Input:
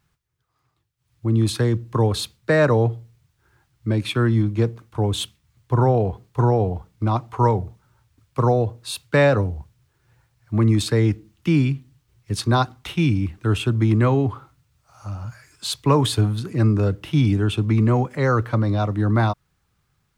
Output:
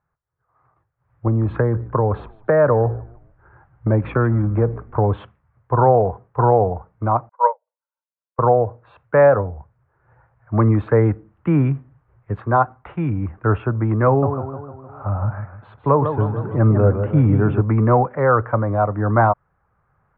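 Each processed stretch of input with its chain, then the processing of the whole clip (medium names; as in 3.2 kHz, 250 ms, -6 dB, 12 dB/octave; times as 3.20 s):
1.27–5.10 s: bass shelf 400 Hz +5.5 dB + compression 4:1, threshold -18 dBFS + frequency-shifting echo 152 ms, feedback 34%, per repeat -50 Hz, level -21 dB
7.29–8.39 s: brick-wall FIR high-pass 470 Hz + comb 2 ms, depth 72% + upward expansion 2.5:1, over -36 dBFS
14.07–17.61 s: low-pass 9.8 kHz + tilt shelf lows +3 dB, about 650 Hz + modulated delay 153 ms, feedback 49%, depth 141 cents, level -8 dB
whole clip: inverse Chebyshev low-pass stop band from 5 kHz, stop band 60 dB; resonant low shelf 420 Hz -7 dB, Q 1.5; level rider gain up to 16 dB; trim -3 dB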